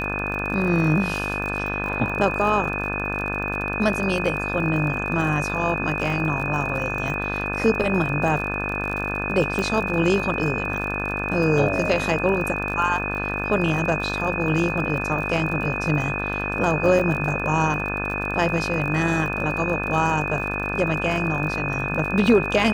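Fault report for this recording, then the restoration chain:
mains buzz 50 Hz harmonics 35 −29 dBFS
surface crackle 40 per second −29 dBFS
whistle 2,500 Hz −27 dBFS
0:09.59: click −13 dBFS
0:16.99–0:17.00: drop-out 5.9 ms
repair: click removal
hum removal 50 Hz, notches 35
notch filter 2,500 Hz, Q 30
repair the gap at 0:16.99, 5.9 ms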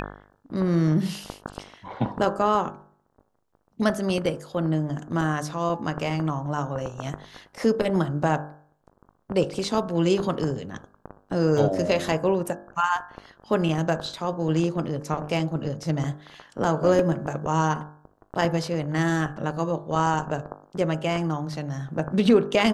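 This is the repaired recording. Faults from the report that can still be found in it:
none of them is left

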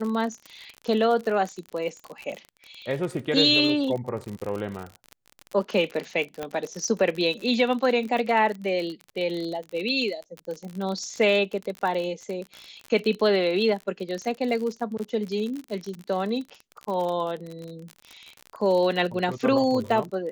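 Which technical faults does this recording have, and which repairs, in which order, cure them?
surface crackle 46 per second −30 dBFS
0:06.43: click −18 dBFS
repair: click removal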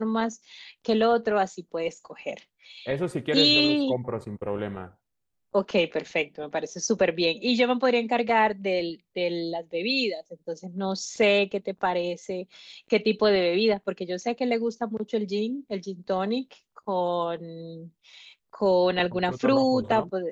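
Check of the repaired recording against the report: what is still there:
none of them is left

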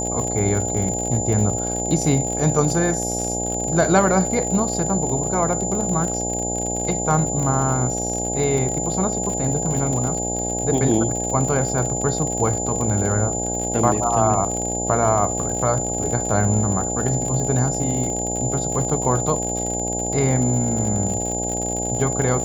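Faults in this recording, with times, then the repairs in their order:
mains buzz 60 Hz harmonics 14 −27 dBFS
surface crackle 59 per second −25 dBFS
whistle 7,100 Hz −25 dBFS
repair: click removal
hum removal 60 Hz, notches 14
notch filter 7,100 Hz, Q 30

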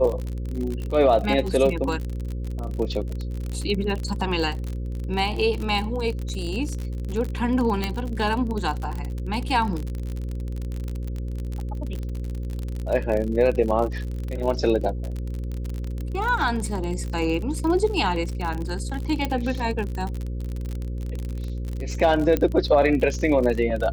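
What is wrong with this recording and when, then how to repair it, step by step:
mains buzz 60 Hz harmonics 9 −29 dBFS
surface crackle 44 per second −27 dBFS
0:07.84: click −11 dBFS
0:19.25: click
0:22.37: click −10 dBFS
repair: click removal
hum removal 60 Hz, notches 9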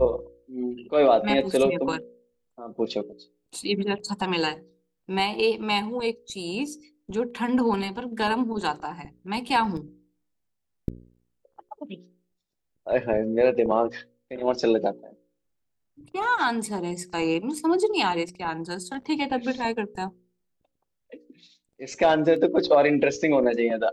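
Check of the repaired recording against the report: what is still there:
0:07.84: click
0:22.37: click

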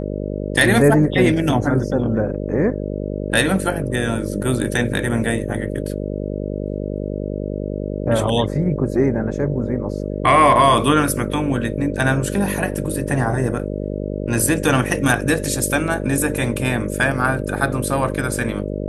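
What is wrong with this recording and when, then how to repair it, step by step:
mains buzz 50 Hz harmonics 12 −25 dBFS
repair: hum removal 50 Hz, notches 12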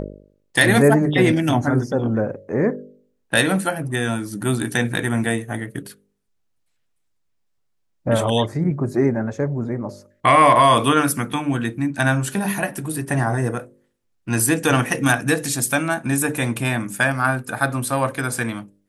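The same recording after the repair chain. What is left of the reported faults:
none of them is left

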